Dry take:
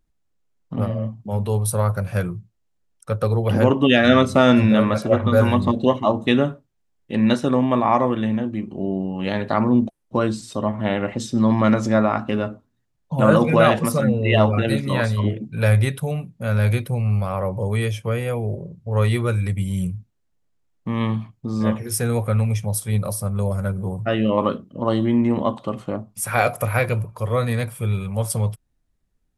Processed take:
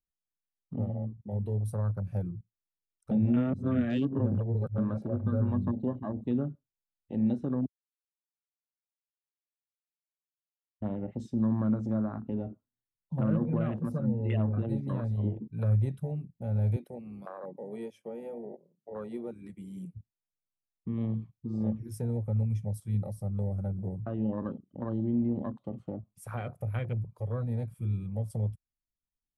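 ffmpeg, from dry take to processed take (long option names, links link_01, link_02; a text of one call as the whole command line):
ffmpeg -i in.wav -filter_complex "[0:a]asettb=1/sr,asplit=3[link_01][link_02][link_03];[link_01]atrim=end=16.764[link_04];[link_02]atrim=start=16.76:end=19.96,asetpts=PTS-STARTPTS,afade=type=in:duration=0.004:curve=qsin,afade=type=out:start_time=3.196:duration=0.004:curve=qsin,highpass=frequency=220:width=0.5412,highpass=frequency=220:width=1.3066[link_05];[link_03]atrim=start=19.956[link_06];[link_04][link_05]acrossfade=duration=0.004:curve1=hsin:curve2=qsin[link_07];[link_07][link_06]acrossfade=duration=0.004:curve1=qsin:curve2=hsin,asplit=5[link_08][link_09][link_10][link_11][link_12];[link_08]atrim=end=3.112[link_13];[link_09]atrim=start=3.108:end=4.782,asetpts=PTS-STARTPTS,areverse[link_14];[link_10]atrim=start=4.778:end=7.66,asetpts=PTS-STARTPTS,afade=type=out:start_time=2.878:duration=0.004:curve=hsin[link_15];[link_11]atrim=start=7.66:end=10.82,asetpts=PTS-STARTPTS,volume=0[link_16];[link_12]atrim=start=10.82,asetpts=PTS-STARTPTS,afade=type=in:duration=0.004:curve=hsin[link_17];[link_13][link_14]acrossfade=duration=0.004:curve1=hsin:curve2=hsin[link_18];[link_15][link_16][link_17]concat=n=3:v=0:a=1[link_19];[link_18][link_19]acrossfade=duration=0.004:curve1=hsin:curve2=hsin,afwtdn=0.0708,acrossover=split=310[link_20][link_21];[link_21]acompressor=threshold=-32dB:ratio=6[link_22];[link_20][link_22]amix=inputs=2:normalize=0,volume=-8.5dB" out.wav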